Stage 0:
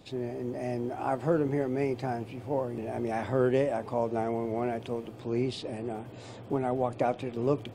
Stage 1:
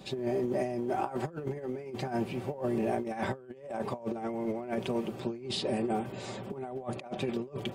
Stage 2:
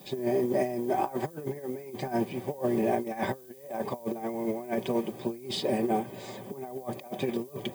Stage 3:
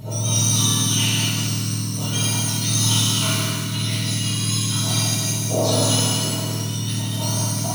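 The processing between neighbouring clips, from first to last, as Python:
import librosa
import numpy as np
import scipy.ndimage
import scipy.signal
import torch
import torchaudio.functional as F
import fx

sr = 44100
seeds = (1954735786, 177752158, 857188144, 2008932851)

y1 = scipy.signal.sosfilt(scipy.signal.butter(2, 49.0, 'highpass', fs=sr, output='sos'), x)
y1 = y1 + 0.6 * np.pad(y1, (int(5.2 * sr / 1000.0), 0))[:len(y1)]
y1 = fx.over_compress(y1, sr, threshold_db=-33.0, ratio=-0.5)
y2 = fx.dmg_noise_colour(y1, sr, seeds[0], colour='violet', level_db=-54.0)
y2 = fx.notch_comb(y2, sr, f0_hz=1400.0)
y2 = fx.upward_expand(y2, sr, threshold_db=-40.0, expansion=1.5)
y2 = y2 * 10.0 ** (5.0 / 20.0)
y3 = fx.octave_mirror(y2, sr, pivot_hz=1500.0)
y3 = fx.echo_multitap(y3, sr, ms=(155, 187, 234), db=(-9.0, -13.5, -10.0))
y3 = fx.rev_shimmer(y3, sr, seeds[1], rt60_s=1.6, semitones=7, shimmer_db=-8, drr_db=-8.0)
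y3 = y3 * 10.0 ** (3.5 / 20.0)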